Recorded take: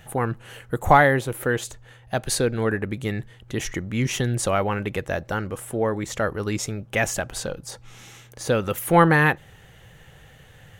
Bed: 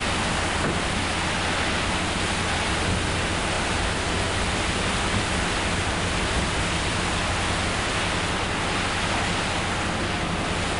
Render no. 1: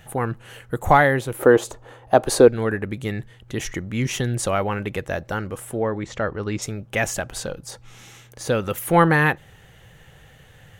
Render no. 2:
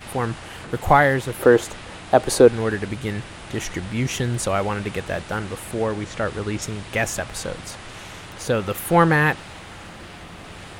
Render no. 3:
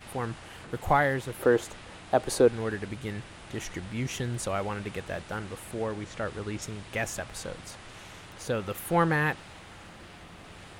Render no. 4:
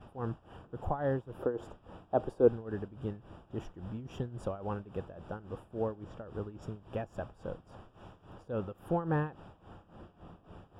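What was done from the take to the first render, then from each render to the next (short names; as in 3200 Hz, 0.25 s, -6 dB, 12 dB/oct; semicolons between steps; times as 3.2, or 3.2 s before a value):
1.39–2.48 band shelf 570 Hz +11.5 dB 2.6 oct; 5.79–6.62 air absorption 110 m
add bed -14 dB
gain -8.5 dB
tremolo 3.6 Hz, depth 84%; running mean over 21 samples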